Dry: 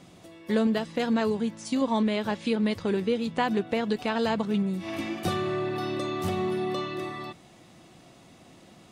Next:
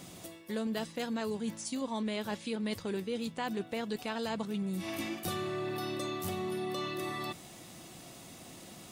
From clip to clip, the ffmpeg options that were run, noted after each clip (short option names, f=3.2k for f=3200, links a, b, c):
-af "aemphasis=mode=production:type=50fm,areverse,acompressor=threshold=-36dB:ratio=4,areverse,volume=1.5dB"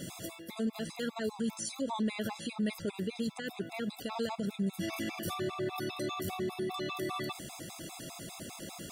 -af "alimiter=level_in=9.5dB:limit=-24dB:level=0:latency=1:release=48,volume=-9.5dB,afftfilt=real='re*gt(sin(2*PI*5*pts/sr)*(1-2*mod(floor(b*sr/1024/680),2)),0)':imag='im*gt(sin(2*PI*5*pts/sr)*(1-2*mod(floor(b*sr/1024/680),2)),0)':win_size=1024:overlap=0.75,volume=8.5dB"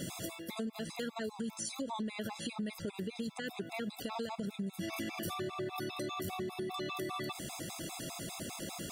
-af "acompressor=threshold=-38dB:ratio=6,volume=2.5dB"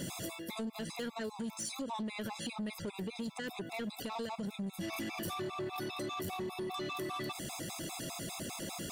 -af "asoftclip=type=tanh:threshold=-34.5dB,volume=2dB"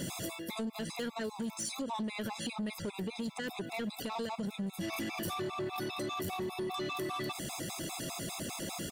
-af "aecho=1:1:1189:0.075,volume=2dB"